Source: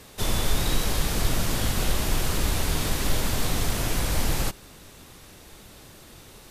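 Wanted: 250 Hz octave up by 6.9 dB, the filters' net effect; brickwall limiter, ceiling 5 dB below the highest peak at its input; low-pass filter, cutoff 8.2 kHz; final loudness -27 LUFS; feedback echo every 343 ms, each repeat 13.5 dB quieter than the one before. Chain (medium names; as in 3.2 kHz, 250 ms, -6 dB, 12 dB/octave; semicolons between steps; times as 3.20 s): low-pass 8.2 kHz; peaking EQ 250 Hz +9 dB; peak limiter -14.5 dBFS; feedback delay 343 ms, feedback 21%, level -13.5 dB; trim -0.5 dB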